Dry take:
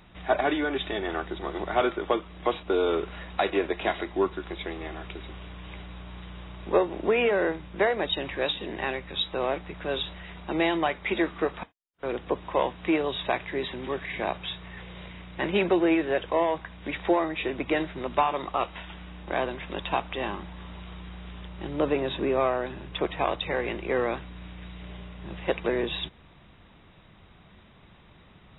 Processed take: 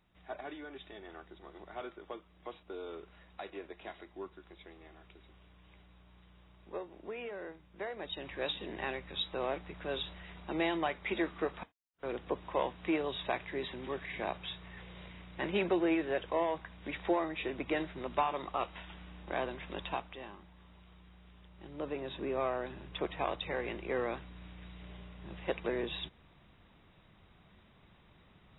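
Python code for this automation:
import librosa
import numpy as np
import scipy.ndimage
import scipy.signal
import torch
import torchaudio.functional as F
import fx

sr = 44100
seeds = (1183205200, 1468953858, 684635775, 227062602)

y = fx.gain(x, sr, db=fx.line((7.68, -19.0), (8.52, -7.5), (19.84, -7.5), (20.27, -17.0), (21.42, -17.0), (22.57, -8.0)))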